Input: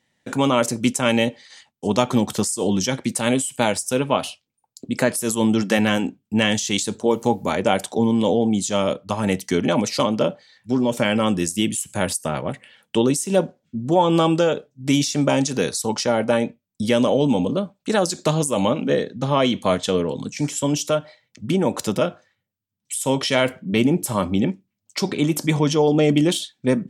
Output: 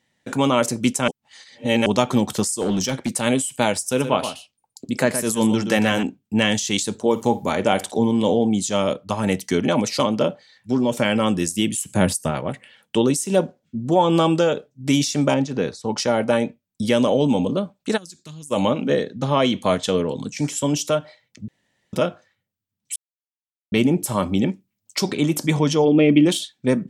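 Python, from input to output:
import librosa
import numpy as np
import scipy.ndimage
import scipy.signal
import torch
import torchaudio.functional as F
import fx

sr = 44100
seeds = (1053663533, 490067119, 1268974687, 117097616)

y = fx.clip_hard(x, sr, threshold_db=-16.5, at=(2.6, 3.1))
y = fx.echo_single(y, sr, ms=120, db=-9.5, at=(3.85, 6.03))
y = fx.room_flutter(y, sr, wall_m=9.5, rt60_s=0.22, at=(7.1, 8.45))
y = fx.peak_eq(y, sr, hz=fx.line((11.77, 390.0), (12.3, 67.0)), db=8.5, octaves=2.5, at=(11.77, 12.3), fade=0.02)
y = fx.spacing_loss(y, sr, db_at_10k=23, at=(15.34, 15.97))
y = fx.tone_stack(y, sr, knobs='6-0-2', at=(17.96, 18.5), fade=0.02)
y = fx.high_shelf(y, sr, hz=6300.0, db=6.5, at=(24.26, 25.16))
y = fx.cabinet(y, sr, low_hz=120.0, low_slope=12, high_hz=3300.0, hz=(310.0, 800.0, 1500.0, 2400.0), db=(5, -8, -5, 7), at=(25.84, 26.25), fade=0.02)
y = fx.edit(y, sr, fx.reverse_span(start_s=1.08, length_s=0.78),
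    fx.room_tone_fill(start_s=21.48, length_s=0.45),
    fx.silence(start_s=22.96, length_s=0.76), tone=tone)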